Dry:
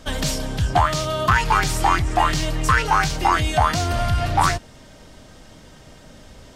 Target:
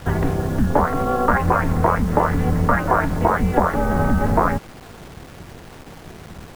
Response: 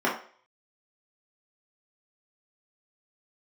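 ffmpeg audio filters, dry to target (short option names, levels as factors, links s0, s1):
-filter_complex "[0:a]lowpass=f=1700:w=0.5412,lowpass=f=1700:w=1.3066,acompressor=threshold=0.112:ratio=4,aeval=exprs='val(0)*sin(2*PI*130*n/s)':c=same,acrusher=bits=7:mix=0:aa=0.000001,asplit=2[s0][s1];[s1]asetrate=22050,aresample=44100,atempo=2,volume=0.562[s2];[s0][s2]amix=inputs=2:normalize=0,volume=2.24"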